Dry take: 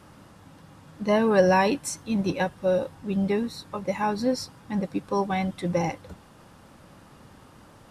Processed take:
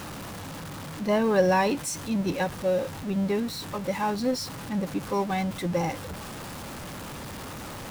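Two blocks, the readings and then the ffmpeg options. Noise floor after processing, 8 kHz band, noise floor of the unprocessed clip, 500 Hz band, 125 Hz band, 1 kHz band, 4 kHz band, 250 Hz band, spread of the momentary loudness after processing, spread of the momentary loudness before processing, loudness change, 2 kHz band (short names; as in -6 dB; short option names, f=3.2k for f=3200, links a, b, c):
-38 dBFS, +2.0 dB, -52 dBFS, -1.5 dB, -0.5 dB, -1.5 dB, +2.0 dB, -1.0 dB, 15 LU, 12 LU, -3.0 dB, -1.0 dB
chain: -af "aeval=exprs='val(0)+0.5*0.0299*sgn(val(0))':c=same,volume=-3dB"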